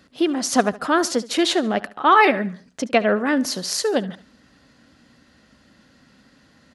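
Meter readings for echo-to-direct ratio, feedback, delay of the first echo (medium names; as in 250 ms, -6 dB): -18.0 dB, 40%, 72 ms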